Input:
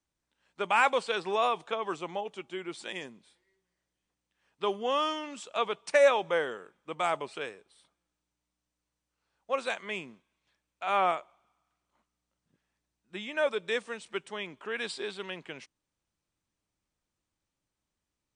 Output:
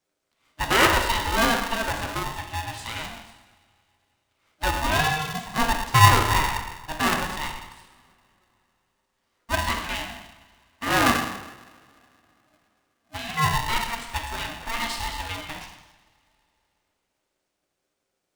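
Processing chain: 5.26–6.18 RIAA curve playback; two-slope reverb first 0.98 s, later 3.4 s, from -24 dB, DRR 0.5 dB; polarity switched at an audio rate 460 Hz; gain +4 dB

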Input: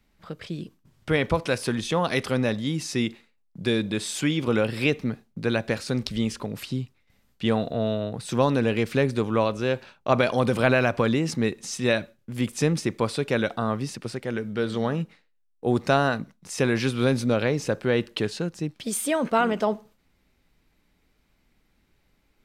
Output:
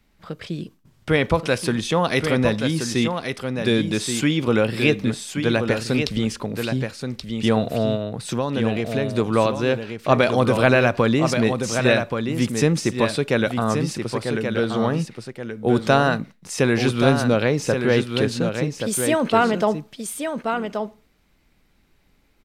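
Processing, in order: 7.95–9.11 compressor 3:1, threshold -26 dBFS, peak gain reduction 8 dB; echo 1.128 s -6.5 dB; gain +4 dB

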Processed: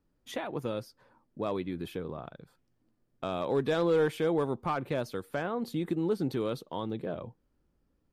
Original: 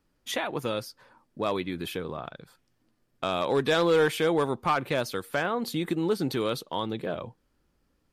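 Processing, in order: tilt shelf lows +5 dB; gain -6.5 dB

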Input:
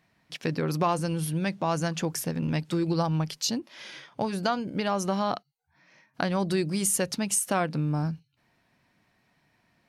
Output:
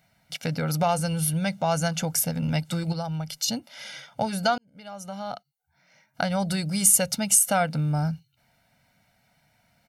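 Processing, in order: 2.92–3.48 compressor 5:1, threshold -30 dBFS, peak gain reduction 8.5 dB; high shelf 7800 Hz +11 dB; comb 1.4 ms, depth 83%; 4.58–6.53 fade in linear

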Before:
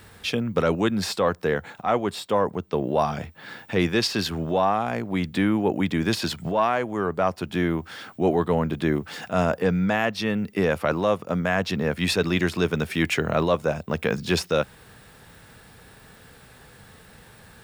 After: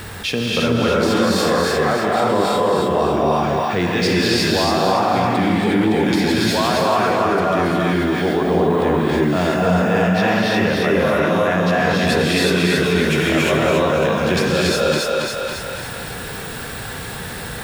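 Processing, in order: on a send: thinning echo 0.277 s, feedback 43%, level -3 dB; on the sum: non-linear reverb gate 0.39 s rising, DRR -5.5 dB; fast leveller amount 50%; gain -3 dB

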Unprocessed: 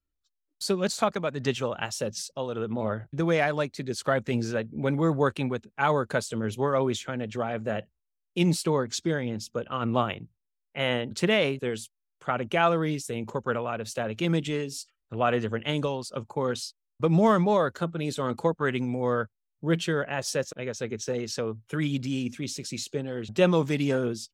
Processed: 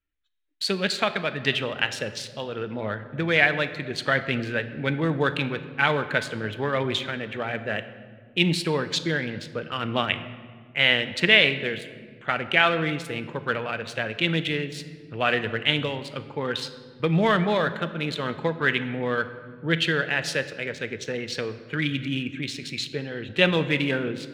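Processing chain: Wiener smoothing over 9 samples; band shelf 2600 Hz +12.5 dB; reverb RT60 1.8 s, pre-delay 6 ms, DRR 10 dB; gain -1 dB

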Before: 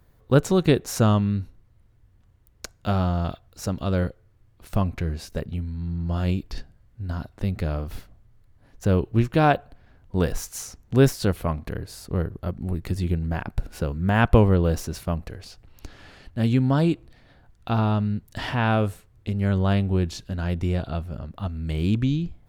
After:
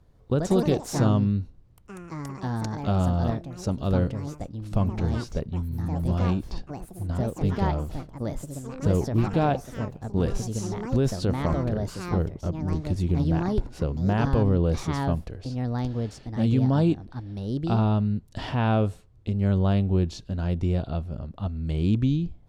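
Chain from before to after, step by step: bell 1800 Hz -7.5 dB 1.4 oct; limiter -12.5 dBFS, peak gain reduction 10.5 dB; air absorption 59 m; echoes that change speed 0.152 s, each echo +4 st, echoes 3, each echo -6 dB

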